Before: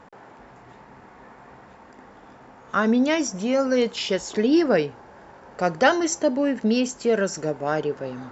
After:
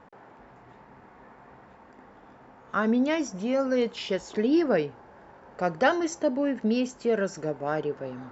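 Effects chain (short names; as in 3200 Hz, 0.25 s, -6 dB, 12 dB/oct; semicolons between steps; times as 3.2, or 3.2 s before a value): LPF 3100 Hz 6 dB/oct; gain -4 dB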